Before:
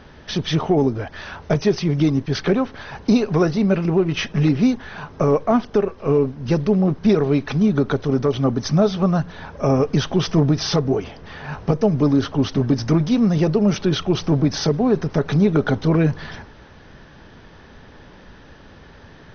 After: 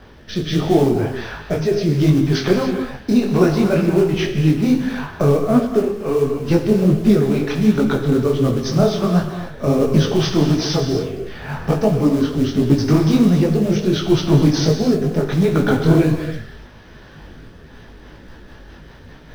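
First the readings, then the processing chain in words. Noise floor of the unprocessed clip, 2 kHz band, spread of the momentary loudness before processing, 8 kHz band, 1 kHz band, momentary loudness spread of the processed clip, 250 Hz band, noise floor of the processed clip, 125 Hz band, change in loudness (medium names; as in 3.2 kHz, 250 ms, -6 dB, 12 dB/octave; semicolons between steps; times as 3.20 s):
-45 dBFS, +2.0 dB, 8 LU, no reading, +0.5 dB, 8 LU, +2.5 dB, -42 dBFS, +2.5 dB, +2.5 dB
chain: on a send: flutter echo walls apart 8.7 m, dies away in 0.21 s; on the sum: hum 50 Hz, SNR 32 dB; rotary cabinet horn 0.75 Hz, later 5 Hz, at 17.36 s; in parallel at -3 dB: short-mantissa float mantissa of 2-bit; on the sum: gated-style reverb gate 320 ms flat, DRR 5 dB; detune thickener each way 49 cents; trim +2 dB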